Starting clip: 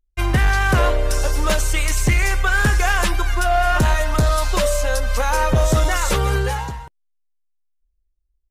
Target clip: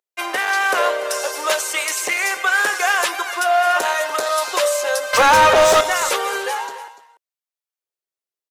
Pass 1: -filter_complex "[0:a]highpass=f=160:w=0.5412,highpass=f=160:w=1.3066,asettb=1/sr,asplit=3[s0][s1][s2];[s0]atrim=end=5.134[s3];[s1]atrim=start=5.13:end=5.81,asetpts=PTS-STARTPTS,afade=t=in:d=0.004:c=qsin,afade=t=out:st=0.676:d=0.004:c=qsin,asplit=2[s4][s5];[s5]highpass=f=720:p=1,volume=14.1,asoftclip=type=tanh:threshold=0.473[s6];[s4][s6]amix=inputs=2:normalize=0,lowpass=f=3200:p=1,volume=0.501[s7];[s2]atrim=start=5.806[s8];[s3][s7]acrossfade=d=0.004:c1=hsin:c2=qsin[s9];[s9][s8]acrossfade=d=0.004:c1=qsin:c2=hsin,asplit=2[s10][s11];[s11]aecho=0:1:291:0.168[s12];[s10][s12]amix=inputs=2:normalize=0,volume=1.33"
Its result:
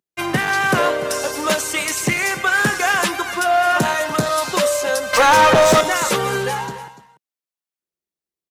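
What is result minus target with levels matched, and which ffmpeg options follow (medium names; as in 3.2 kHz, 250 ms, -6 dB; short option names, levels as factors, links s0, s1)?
125 Hz band +14.0 dB
-filter_complex "[0:a]highpass=f=450:w=0.5412,highpass=f=450:w=1.3066,asettb=1/sr,asplit=3[s0][s1][s2];[s0]atrim=end=5.134[s3];[s1]atrim=start=5.13:end=5.81,asetpts=PTS-STARTPTS,afade=t=in:d=0.004:c=qsin,afade=t=out:st=0.676:d=0.004:c=qsin,asplit=2[s4][s5];[s5]highpass=f=720:p=1,volume=14.1,asoftclip=type=tanh:threshold=0.473[s6];[s4][s6]amix=inputs=2:normalize=0,lowpass=f=3200:p=1,volume=0.501[s7];[s2]atrim=start=5.806[s8];[s3][s7]acrossfade=d=0.004:c1=hsin:c2=qsin[s9];[s9][s8]acrossfade=d=0.004:c1=qsin:c2=hsin,asplit=2[s10][s11];[s11]aecho=0:1:291:0.168[s12];[s10][s12]amix=inputs=2:normalize=0,volume=1.33"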